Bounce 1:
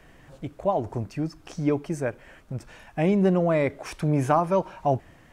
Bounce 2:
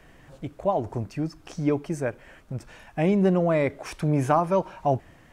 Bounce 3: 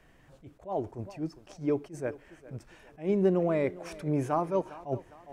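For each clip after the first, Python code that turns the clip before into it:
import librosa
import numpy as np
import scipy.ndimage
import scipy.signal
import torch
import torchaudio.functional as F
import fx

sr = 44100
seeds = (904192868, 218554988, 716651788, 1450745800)

y1 = x
y2 = fx.dynamic_eq(y1, sr, hz=380.0, q=1.6, threshold_db=-37.0, ratio=4.0, max_db=7)
y2 = fx.echo_thinned(y2, sr, ms=407, feedback_pct=43, hz=190.0, wet_db=-18.0)
y2 = fx.attack_slew(y2, sr, db_per_s=220.0)
y2 = F.gain(torch.from_numpy(y2), -8.0).numpy()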